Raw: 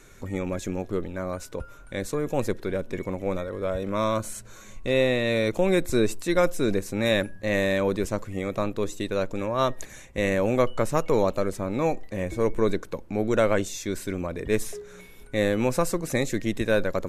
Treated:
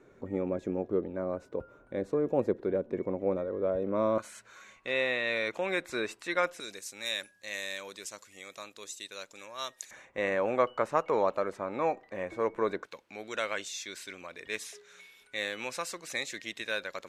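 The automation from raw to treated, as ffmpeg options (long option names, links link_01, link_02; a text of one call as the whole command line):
ffmpeg -i in.wav -af "asetnsamples=nb_out_samples=441:pad=0,asendcmd='4.18 bandpass f 1800;6.6 bandpass f 6100;9.91 bandpass f 1100;12.86 bandpass f 3300',bandpass=frequency=420:width_type=q:width=0.86:csg=0" out.wav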